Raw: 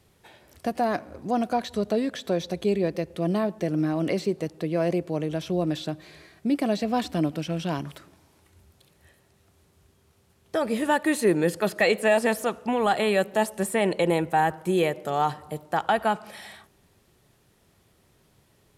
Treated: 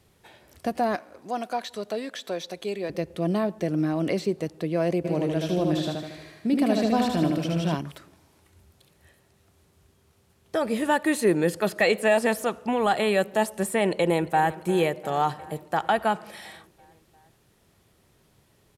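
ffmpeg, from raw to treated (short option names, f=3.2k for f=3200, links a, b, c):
-filter_complex "[0:a]asettb=1/sr,asplit=3[a][b][c];[a]atrim=end=0.954[d];[b]atrim=start=0.95:end=2.9,asetpts=PTS-STARTPTS,afade=t=in:d=0.004:c=qsin,afade=t=out:st=1.946:d=0.004:c=qsin,highpass=f=710:p=1[e];[c]atrim=start=2.896[f];[d][e]acrossfade=d=0.004:c1=hsin:c2=qsin[g];[g][f]acrossfade=d=0.004:c1=qsin:c2=hsin,asplit=3[h][i][j];[h]afade=t=out:st=5.04:d=0.02[k];[i]aecho=1:1:77|154|231|308|385|462|539|616:0.708|0.389|0.214|0.118|0.0648|0.0356|0.0196|0.0108,afade=t=in:st=5.04:d=0.02,afade=t=out:st=7.74:d=0.02[l];[j]afade=t=in:st=7.74:d=0.02[m];[k][l][m]amix=inputs=3:normalize=0,asplit=2[n][o];[o]afade=t=in:st=13.86:d=0.01,afade=t=out:st=14.56:d=0.01,aecho=0:1:350|700|1050|1400|1750|2100|2450|2800:0.141254|0.0988776|0.0692143|0.04845|0.033915|0.0237405|0.0166184|0.0116329[p];[n][p]amix=inputs=2:normalize=0"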